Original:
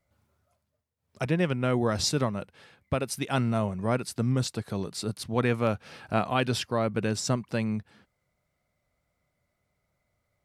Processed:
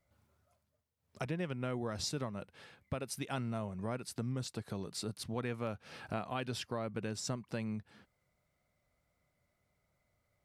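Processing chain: compressor 2.5:1, threshold -37 dBFS, peak gain reduction 12 dB; gain -2 dB

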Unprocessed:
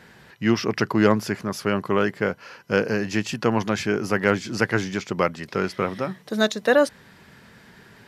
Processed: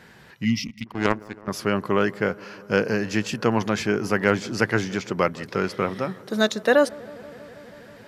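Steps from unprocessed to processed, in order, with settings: 0.67–1.48 power-law curve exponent 2; dark delay 0.161 s, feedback 83%, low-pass 1300 Hz, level -22.5 dB; 0.45–0.87 spectral gain 290–1900 Hz -29 dB

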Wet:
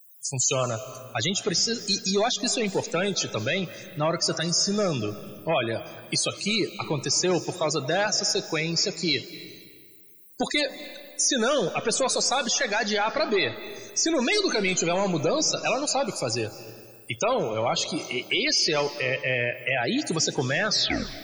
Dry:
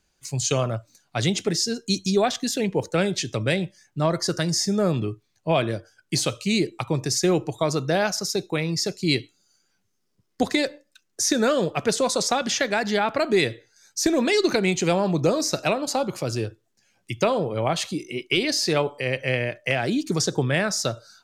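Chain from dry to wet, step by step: tape stop at the end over 0.57 s; tilt +2.5 dB/oct; in parallel at +2 dB: limiter -13 dBFS, peak gain reduction 8 dB; on the sum: soft clip -13 dBFS, distortion -12 dB; added noise blue -41 dBFS; loudest bins only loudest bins 64; on a send at -14 dB: reverb RT60 1.8 s, pre-delay 0.165 s; on the sum: gain -4 dB

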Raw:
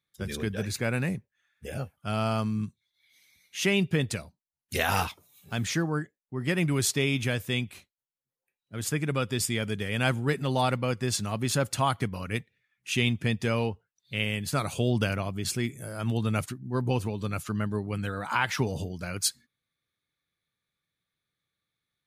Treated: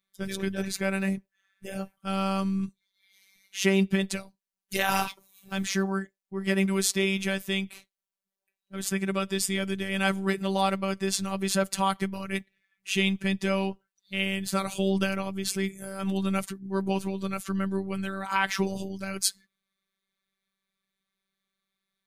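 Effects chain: robotiser 193 Hz; gain +3 dB

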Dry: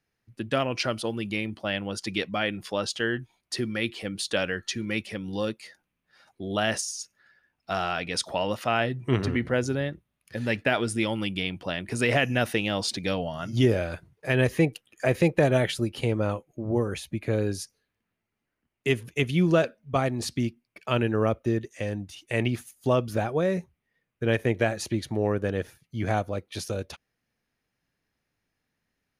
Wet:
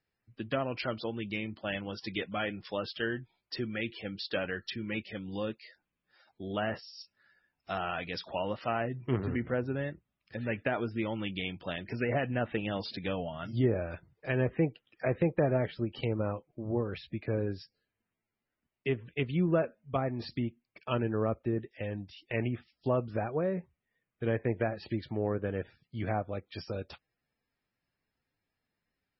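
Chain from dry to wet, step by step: treble ducked by the level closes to 1500 Hz, closed at -20.5 dBFS; gain -5.5 dB; MP3 16 kbps 24000 Hz

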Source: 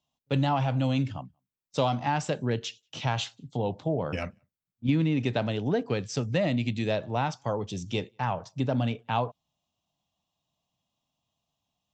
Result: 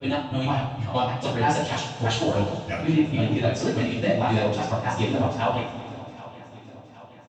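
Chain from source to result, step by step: slices in reverse order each 0.259 s, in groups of 2; in parallel at +1 dB: vocal rider 2 s; on the sum: plain phase-vocoder stretch 0.61×; feedback echo 0.771 s, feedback 59%, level -18.5 dB; two-slope reverb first 0.47 s, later 2.7 s, from -15 dB, DRR -7.5 dB; gain -5.5 dB

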